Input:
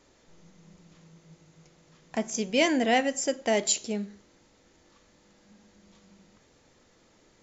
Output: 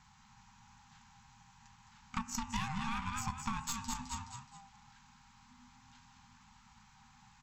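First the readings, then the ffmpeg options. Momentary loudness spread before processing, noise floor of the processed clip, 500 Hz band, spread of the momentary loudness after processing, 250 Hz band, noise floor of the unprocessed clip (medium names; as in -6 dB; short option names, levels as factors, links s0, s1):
11 LU, -63 dBFS, under -40 dB, 14 LU, -13.5 dB, -63 dBFS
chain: -filter_complex "[0:a]aeval=exprs='val(0)*sin(2*PI*460*n/s)':c=same,asplit=5[s0][s1][s2][s3][s4];[s1]adelay=211,afreqshift=43,volume=0.447[s5];[s2]adelay=422,afreqshift=86,volume=0.151[s6];[s3]adelay=633,afreqshift=129,volume=0.0519[s7];[s4]adelay=844,afreqshift=172,volume=0.0176[s8];[s0][s5][s6][s7][s8]amix=inputs=5:normalize=0,asplit=2[s9][s10];[s10]asoftclip=type=hard:threshold=0.106,volume=0.562[s11];[s9][s11]amix=inputs=2:normalize=0,aeval=exprs='0.376*(cos(1*acos(clip(val(0)/0.376,-1,1)))-cos(1*PI/2))+0.0596*(cos(6*acos(clip(val(0)/0.376,-1,1)))-cos(6*PI/2))+0.0133*(cos(8*acos(clip(val(0)/0.376,-1,1)))-cos(8*PI/2))':c=same,lowpass=f=1900:p=1,afftfilt=real='re*(1-between(b*sr/4096,250,770))':imag='im*(1-between(b*sr/4096,250,770))':win_size=4096:overlap=0.75,crystalizer=i=1.5:c=0,bandreject=f=83.22:t=h:w=4,bandreject=f=166.44:t=h:w=4,bandreject=f=249.66:t=h:w=4,bandreject=f=332.88:t=h:w=4,bandreject=f=416.1:t=h:w=4,bandreject=f=499.32:t=h:w=4,bandreject=f=582.54:t=h:w=4,bandreject=f=665.76:t=h:w=4,bandreject=f=748.98:t=h:w=4,bandreject=f=832.2:t=h:w=4,bandreject=f=915.42:t=h:w=4,bandreject=f=998.64:t=h:w=4,bandreject=f=1081.86:t=h:w=4,bandreject=f=1165.08:t=h:w=4,bandreject=f=1248.3:t=h:w=4,bandreject=f=1331.52:t=h:w=4,bandreject=f=1414.74:t=h:w=4,bandreject=f=1497.96:t=h:w=4,bandreject=f=1581.18:t=h:w=4,bandreject=f=1664.4:t=h:w=4,bandreject=f=1747.62:t=h:w=4,bandreject=f=1830.84:t=h:w=4,bandreject=f=1914.06:t=h:w=4,bandreject=f=1997.28:t=h:w=4,bandreject=f=2080.5:t=h:w=4,bandreject=f=2163.72:t=h:w=4,bandreject=f=2246.94:t=h:w=4,bandreject=f=2330.16:t=h:w=4,bandreject=f=2413.38:t=h:w=4,bandreject=f=2496.6:t=h:w=4,bandreject=f=2579.82:t=h:w=4,bandreject=f=2663.04:t=h:w=4,bandreject=f=2746.26:t=h:w=4,bandreject=f=2829.48:t=h:w=4,bandreject=f=2912.7:t=h:w=4,bandreject=f=2995.92:t=h:w=4,bandreject=f=3079.14:t=h:w=4,acompressor=threshold=0.0178:ratio=8,volume=1.12"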